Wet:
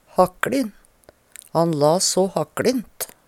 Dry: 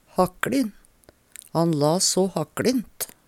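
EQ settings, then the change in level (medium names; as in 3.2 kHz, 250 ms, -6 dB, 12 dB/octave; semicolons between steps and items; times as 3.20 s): FFT filter 330 Hz 0 dB, 550 Hz +6 dB, 3.5 kHz +1 dB; 0.0 dB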